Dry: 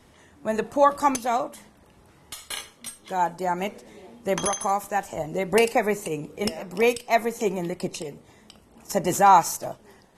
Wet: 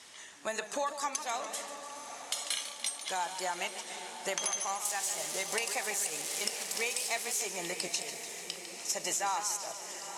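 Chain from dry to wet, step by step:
0:04.85–0:07.47: spike at every zero crossing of −23.5 dBFS
meter weighting curve ITU-R 468
downward compressor 6 to 1, threshold −32 dBFS, peak gain reduction 19 dB
feedback delay with all-pass diffusion 955 ms, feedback 46%, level −10 dB
feedback echo with a swinging delay time 147 ms, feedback 62%, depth 115 cents, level −11 dB

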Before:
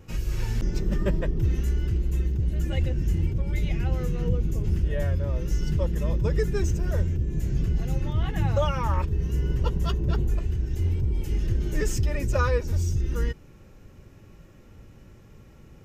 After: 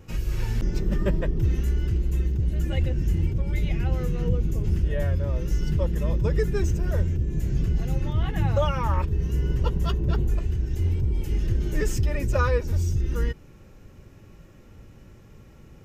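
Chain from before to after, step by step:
dynamic equaliser 6,500 Hz, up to −3 dB, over −52 dBFS, Q 1.1
level +1 dB

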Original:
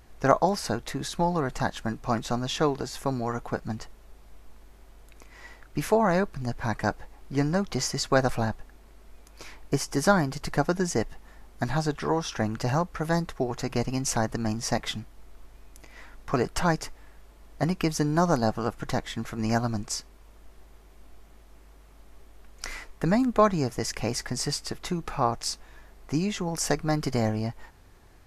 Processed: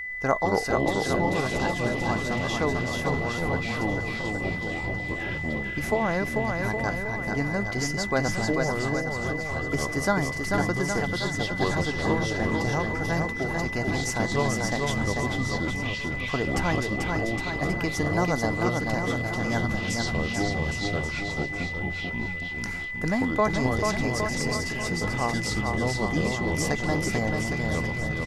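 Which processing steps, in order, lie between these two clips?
delay with pitch and tempo change per echo 112 ms, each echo −6 semitones, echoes 2
bouncing-ball delay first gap 440 ms, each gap 0.85×, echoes 5
steady tone 2,000 Hz −28 dBFS
level −3.5 dB

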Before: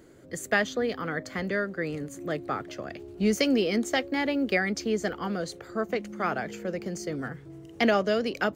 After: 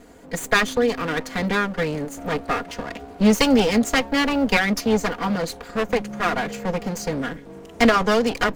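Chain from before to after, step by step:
lower of the sound and its delayed copy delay 4.2 ms
level +8.5 dB

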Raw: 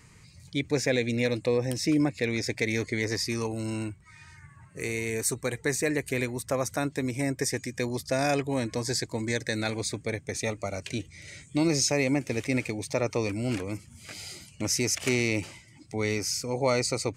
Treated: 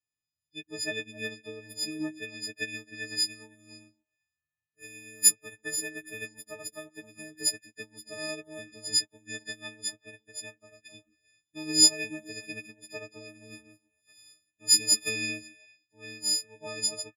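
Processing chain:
every partial snapped to a pitch grid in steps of 6 semitones
comb filter 2.8 ms, depth 38%
echo through a band-pass that steps 132 ms, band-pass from 270 Hz, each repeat 1.4 octaves, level −2.5 dB
expander for the loud parts 2.5 to 1, over −41 dBFS
level −3 dB

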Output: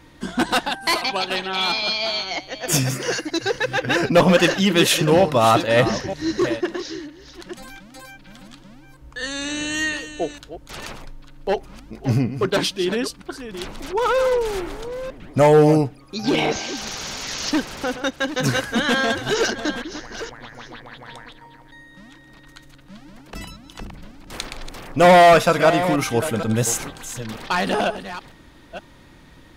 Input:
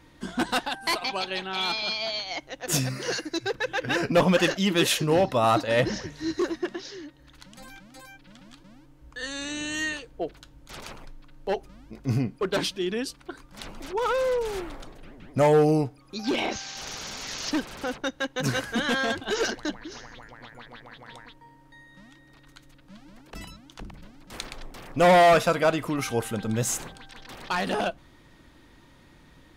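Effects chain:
delay that plays each chunk backwards 472 ms, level −11.5 dB
0:02.47–0:03.20: notch filter 4,100 Hz, Q 5.5
level +6 dB

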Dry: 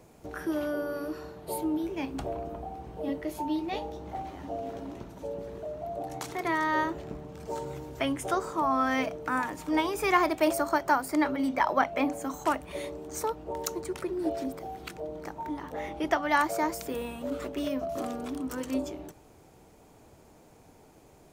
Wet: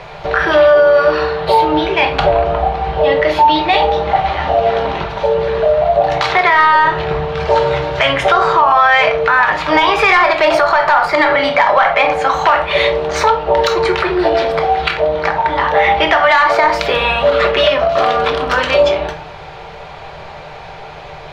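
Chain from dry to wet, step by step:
drawn EQ curve 160 Hz 0 dB, 240 Hz −19 dB, 490 Hz +3 dB, 800 Hz +7 dB, 1,700 Hz +11 dB, 4,000 Hz +10 dB, 7,900 Hz −18 dB, 14,000 Hz −25 dB
downward compressor 1.5 to 1, threshold −32 dBFS, peak gain reduction 8.5 dB
soft clipping −13.5 dBFS, distortion −22 dB
rectangular room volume 310 cubic metres, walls furnished, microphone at 1.2 metres
boost into a limiter +20.5 dB
level −1 dB

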